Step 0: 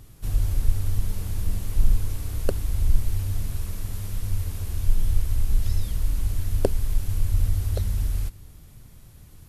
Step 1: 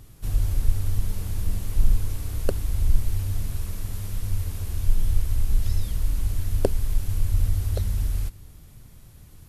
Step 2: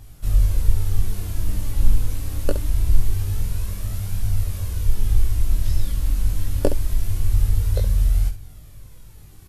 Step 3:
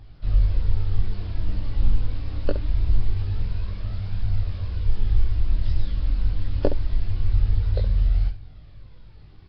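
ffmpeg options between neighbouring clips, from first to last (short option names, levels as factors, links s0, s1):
-af anull
-af "flanger=delay=1.2:depth=2.8:regen=54:speed=0.24:shape=triangular,aecho=1:1:20|68:0.631|0.316,volume=1.88"
-af "volume=0.794" -ar 11025 -c:a nellymoser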